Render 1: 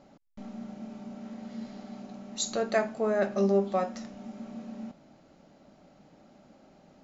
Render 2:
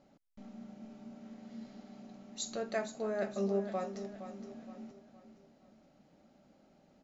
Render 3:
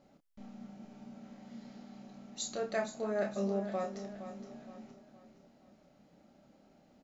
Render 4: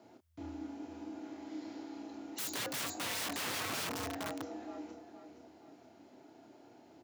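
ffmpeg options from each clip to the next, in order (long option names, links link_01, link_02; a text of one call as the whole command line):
ffmpeg -i in.wav -filter_complex "[0:a]equalizer=frequency=1000:width=1.5:gain=-2.5,asplit=2[link_01][link_02];[link_02]aecho=0:1:467|934|1401|1868:0.266|0.112|0.0469|0.0197[link_03];[link_01][link_03]amix=inputs=2:normalize=0,volume=-8dB" out.wav
ffmpeg -i in.wav -filter_complex "[0:a]asplit=2[link_01][link_02];[link_02]adelay=29,volume=-5dB[link_03];[link_01][link_03]amix=inputs=2:normalize=0" out.wav
ffmpeg -i in.wav -af "aeval=exprs='(mod(79.4*val(0)+1,2)-1)/79.4':channel_layout=same,afreqshift=80,volume=5dB" out.wav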